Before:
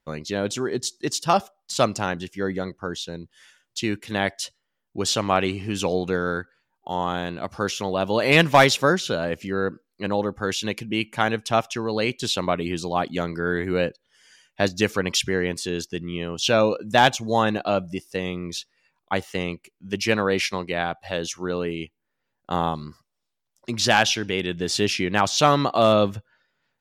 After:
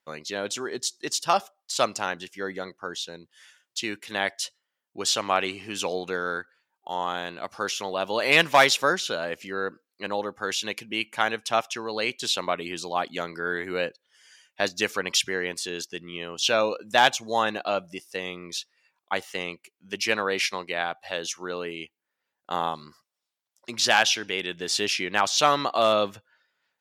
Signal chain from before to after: HPF 740 Hz 6 dB/oct

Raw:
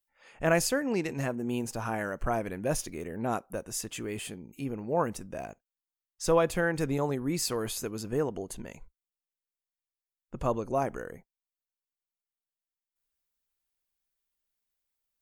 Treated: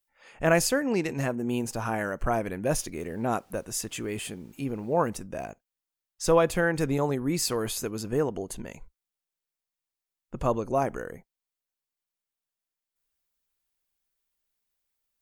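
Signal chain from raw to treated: 2.96–5.09 added noise pink -68 dBFS; gain +3 dB

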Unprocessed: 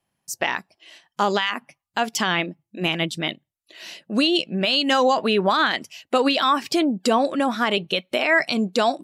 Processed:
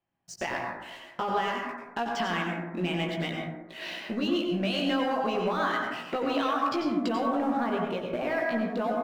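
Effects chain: LPF 2700 Hz 12 dB/oct, from 7.4 s 1400 Hz; compressor 4:1, threshold -34 dBFS, peak gain reduction 16.5 dB; sample leveller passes 2; doubler 17 ms -5 dB; plate-style reverb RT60 1.1 s, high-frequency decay 0.3×, pre-delay 80 ms, DRR 0 dB; gain -4.5 dB

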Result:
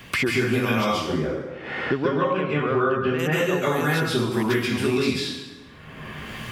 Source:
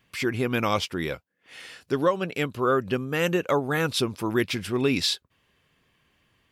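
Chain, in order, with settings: 0.91–3.18 LPF 1000 Hz -> 2000 Hz 12 dB/oct; plate-style reverb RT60 0.77 s, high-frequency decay 0.8×, pre-delay 0.12 s, DRR -9.5 dB; three-band squash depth 100%; gain -7.5 dB

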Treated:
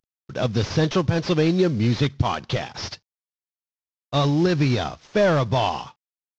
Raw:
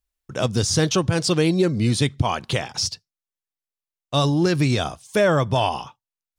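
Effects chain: CVSD 32 kbps

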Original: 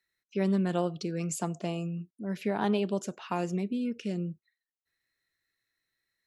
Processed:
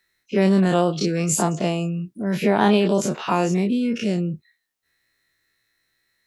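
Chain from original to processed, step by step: spectral dilation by 60 ms; gain +8.5 dB

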